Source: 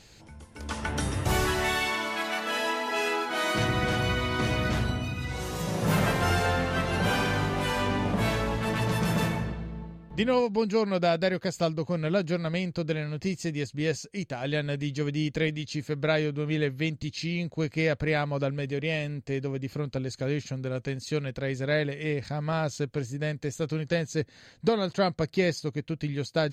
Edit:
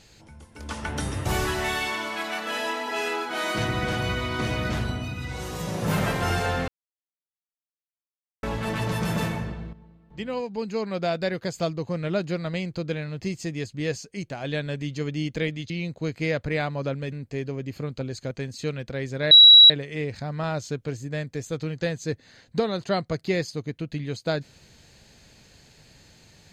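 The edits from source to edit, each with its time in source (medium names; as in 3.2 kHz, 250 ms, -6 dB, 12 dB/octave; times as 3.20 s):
6.68–8.43 s: mute
9.73–11.47 s: fade in, from -13 dB
15.70–17.26 s: delete
18.68–19.08 s: delete
20.27–20.79 s: delete
21.79 s: add tone 3.89 kHz -7 dBFS 0.39 s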